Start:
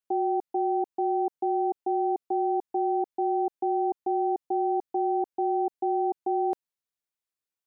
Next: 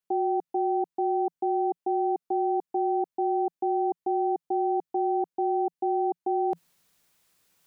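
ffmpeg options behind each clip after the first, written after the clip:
ffmpeg -i in.wav -af "equalizer=frequency=170:width_type=o:width=0.42:gain=9,areverse,acompressor=mode=upward:threshold=-48dB:ratio=2.5,areverse" out.wav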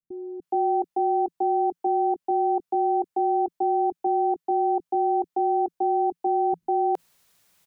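ffmpeg -i in.wav -filter_complex "[0:a]acrossover=split=290[link_01][link_02];[link_02]adelay=420[link_03];[link_01][link_03]amix=inputs=2:normalize=0,volume=4.5dB" out.wav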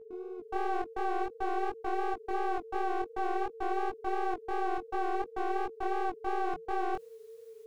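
ffmpeg -i in.wav -af "aeval=exprs='clip(val(0),-1,0.0158)':channel_layout=same,aeval=exprs='val(0)+0.00891*sin(2*PI*450*n/s)':channel_layout=same,flanger=delay=15.5:depth=7:speed=2.8,volume=-3.5dB" out.wav

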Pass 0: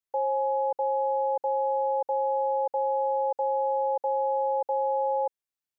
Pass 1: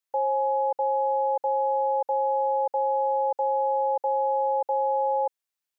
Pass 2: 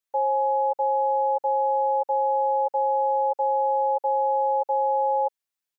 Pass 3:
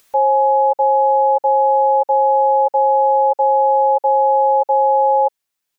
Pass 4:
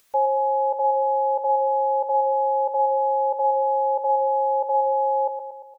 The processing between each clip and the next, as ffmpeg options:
ffmpeg -i in.wav -af "lowshelf=frequency=410:gain=-9.5,volume=4.5dB" out.wav
ffmpeg -i in.wav -af "aecho=1:1:7.1:0.65,volume=-2dB" out.wav
ffmpeg -i in.wav -af "acompressor=mode=upward:threshold=-47dB:ratio=2.5,volume=9dB" out.wav
ffmpeg -i in.wav -af "aecho=1:1:116|232|348|464|580|696|812:0.447|0.25|0.14|0.0784|0.0439|0.0246|0.0138,volume=-5.5dB" out.wav

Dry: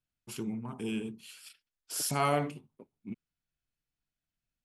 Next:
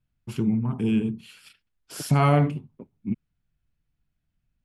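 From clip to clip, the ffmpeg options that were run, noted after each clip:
ffmpeg -i in.wav -af "bass=frequency=250:gain=12,treble=frequency=4000:gain=-10,volume=5.5dB" out.wav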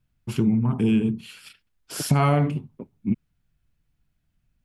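ffmpeg -i in.wav -af "acompressor=threshold=-21dB:ratio=6,volume=5dB" out.wav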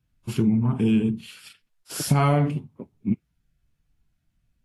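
ffmpeg -i in.wav -ar 48000 -c:a libvorbis -b:a 32k out.ogg

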